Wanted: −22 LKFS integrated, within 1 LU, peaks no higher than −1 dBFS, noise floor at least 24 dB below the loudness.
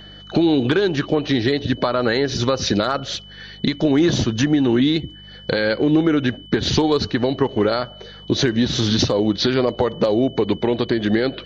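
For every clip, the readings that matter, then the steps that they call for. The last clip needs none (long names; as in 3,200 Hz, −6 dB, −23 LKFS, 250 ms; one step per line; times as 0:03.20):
mains hum 50 Hz; hum harmonics up to 200 Hz; level of the hum −40 dBFS; interfering tone 3,000 Hz; level of the tone −41 dBFS; integrated loudness −19.5 LKFS; sample peak −4.0 dBFS; target loudness −22.0 LKFS
→ hum removal 50 Hz, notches 4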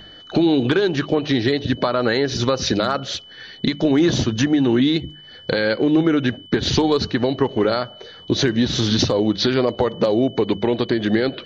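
mains hum none found; interfering tone 3,000 Hz; level of the tone −41 dBFS
→ notch filter 3,000 Hz, Q 30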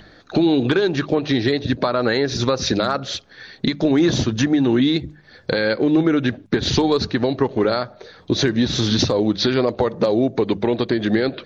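interfering tone none found; integrated loudness −19.5 LKFS; sample peak −4.5 dBFS; target loudness −22.0 LKFS
→ level −2.5 dB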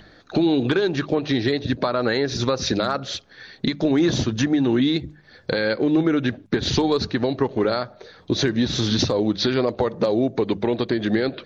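integrated loudness −22.0 LKFS; sample peak −7.0 dBFS; background noise floor −51 dBFS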